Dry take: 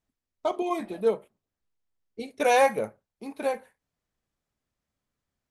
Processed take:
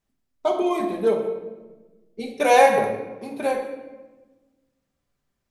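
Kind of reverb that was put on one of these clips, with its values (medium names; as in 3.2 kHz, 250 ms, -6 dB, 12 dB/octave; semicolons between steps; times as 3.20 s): simulated room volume 770 m³, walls mixed, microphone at 1.2 m; trim +3 dB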